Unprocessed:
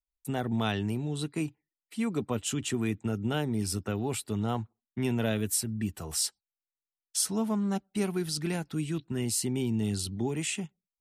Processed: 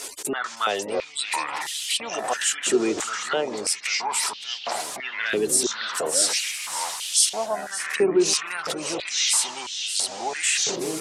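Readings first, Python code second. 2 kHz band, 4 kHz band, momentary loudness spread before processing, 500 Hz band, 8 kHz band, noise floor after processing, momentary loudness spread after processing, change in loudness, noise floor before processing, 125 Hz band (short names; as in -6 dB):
+13.0 dB, +13.0 dB, 5 LU, +9.0 dB, +11.5 dB, -38 dBFS, 9 LU, +7.5 dB, under -85 dBFS, -15.5 dB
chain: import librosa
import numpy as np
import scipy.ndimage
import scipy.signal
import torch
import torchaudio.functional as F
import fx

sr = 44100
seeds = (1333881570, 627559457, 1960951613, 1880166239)

p1 = x + 0.5 * 10.0 ** (-34.0 / 20.0) * np.sign(x)
p2 = fx.spec_gate(p1, sr, threshold_db=-30, keep='strong')
p3 = scipy.signal.sosfilt(scipy.signal.butter(4, 9700.0, 'lowpass', fs=sr, output='sos'), p2)
p4 = fx.high_shelf(p3, sr, hz=5400.0, db=11.5)
p5 = fx.over_compress(p4, sr, threshold_db=-37.0, ratio=-1.0)
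p6 = p4 + (p5 * 10.0 ** (-1.5 / 20.0))
p7 = fx.echo_pitch(p6, sr, ms=442, semitones=-6, count=3, db_per_echo=-6.0)
p8 = p7 + 10.0 ** (-12.0 / 20.0) * np.pad(p7, (int(571 * sr / 1000.0), 0))[:len(p7)]
y = fx.filter_held_highpass(p8, sr, hz=3.0, low_hz=380.0, high_hz=3100.0)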